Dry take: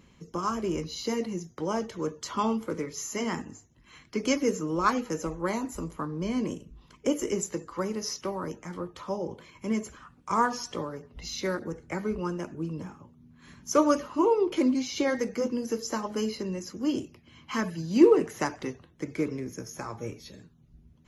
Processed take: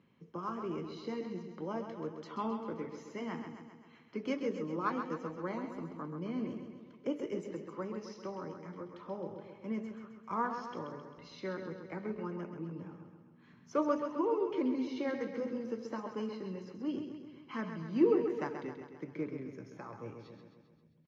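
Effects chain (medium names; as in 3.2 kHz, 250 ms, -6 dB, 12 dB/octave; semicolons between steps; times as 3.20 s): high-pass 110 Hz 24 dB/octave; distance through air 260 m; feedback delay 132 ms, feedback 58%, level -7.5 dB; trim -8.5 dB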